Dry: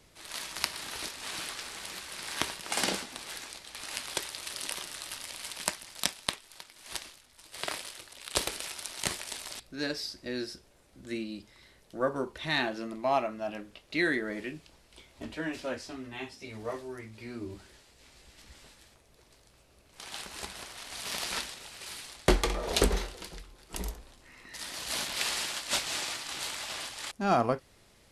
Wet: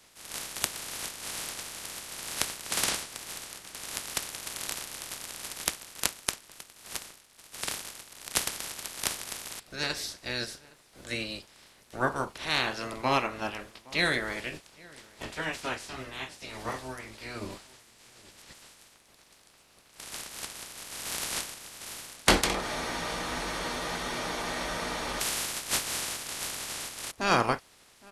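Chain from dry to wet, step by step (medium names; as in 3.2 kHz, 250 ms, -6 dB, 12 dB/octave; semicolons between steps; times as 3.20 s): spectral peaks clipped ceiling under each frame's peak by 19 dB; echo from a far wall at 140 m, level -22 dB; spectral freeze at 22.63 s, 2.58 s; trim +1.5 dB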